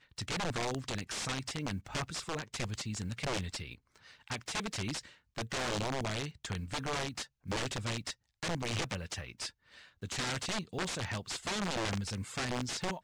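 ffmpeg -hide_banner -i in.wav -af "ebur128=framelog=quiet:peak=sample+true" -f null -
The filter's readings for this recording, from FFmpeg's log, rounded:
Integrated loudness:
  I:         -37.0 LUFS
  Threshold: -47.2 LUFS
Loudness range:
  LRA:         2.0 LU
  Threshold: -57.5 LUFS
  LRA low:   -38.6 LUFS
  LRA high:  -36.6 LUFS
Sample peak:
  Peak:      -25.9 dBFS
True peak:
  Peak:      -25.7 dBFS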